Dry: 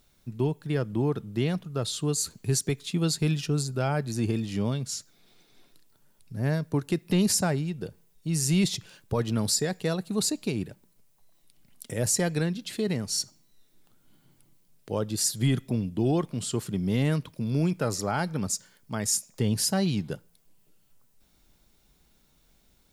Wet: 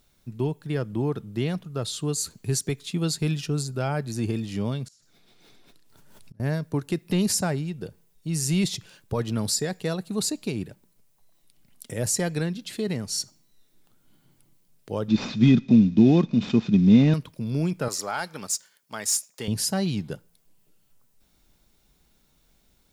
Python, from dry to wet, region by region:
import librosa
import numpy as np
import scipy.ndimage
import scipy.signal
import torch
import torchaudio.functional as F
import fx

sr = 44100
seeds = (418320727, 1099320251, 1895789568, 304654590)

y = fx.chain(x, sr, fx.high_shelf(hz=10000.0, db=-7.0),
    fx.gate_flip(shuts_db=-35.0, range_db=-25),
    fx.pre_swell(db_per_s=25.0), at=(4.87, 6.4))
y = fx.chain(y, sr, fx.cvsd(bps=32000),
    fx.small_body(hz=(220.0, 2500.0, 3600.0), ring_ms=40, db=16), at=(15.08, 17.14))
y = fx.chain(y, sr, fx.highpass(hz=1000.0, slope=6),
    fx.leveller(passes=1), at=(17.88, 19.48))